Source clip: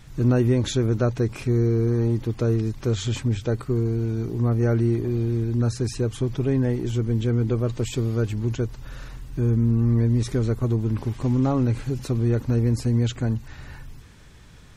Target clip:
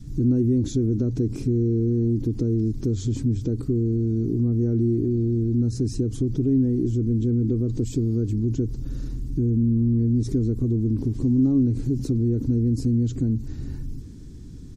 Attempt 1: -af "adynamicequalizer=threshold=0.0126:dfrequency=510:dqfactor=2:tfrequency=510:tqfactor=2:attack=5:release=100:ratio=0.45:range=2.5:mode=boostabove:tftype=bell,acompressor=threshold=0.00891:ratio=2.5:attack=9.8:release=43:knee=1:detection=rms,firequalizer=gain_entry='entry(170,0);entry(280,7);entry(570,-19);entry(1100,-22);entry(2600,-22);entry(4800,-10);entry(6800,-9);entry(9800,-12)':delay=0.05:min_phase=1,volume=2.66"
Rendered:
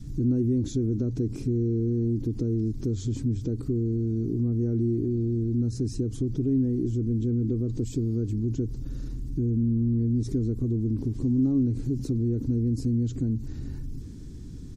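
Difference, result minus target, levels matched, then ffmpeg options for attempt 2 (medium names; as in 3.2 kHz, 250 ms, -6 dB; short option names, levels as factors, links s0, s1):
compression: peak gain reduction +4 dB
-af "adynamicequalizer=threshold=0.0126:dfrequency=510:dqfactor=2:tfrequency=510:tqfactor=2:attack=5:release=100:ratio=0.45:range=2.5:mode=boostabove:tftype=bell,acompressor=threshold=0.0188:ratio=2.5:attack=9.8:release=43:knee=1:detection=rms,firequalizer=gain_entry='entry(170,0);entry(280,7);entry(570,-19);entry(1100,-22);entry(2600,-22);entry(4800,-10);entry(6800,-9);entry(9800,-12)':delay=0.05:min_phase=1,volume=2.66"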